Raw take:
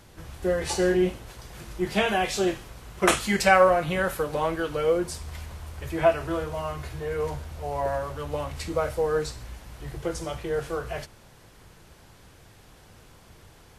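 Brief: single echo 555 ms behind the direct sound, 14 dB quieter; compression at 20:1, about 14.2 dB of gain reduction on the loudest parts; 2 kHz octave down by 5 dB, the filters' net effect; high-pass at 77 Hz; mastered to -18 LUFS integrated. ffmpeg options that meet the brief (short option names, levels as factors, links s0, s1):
-af "highpass=77,equalizer=f=2000:t=o:g=-7,acompressor=threshold=0.0398:ratio=20,aecho=1:1:555:0.2,volume=6.68"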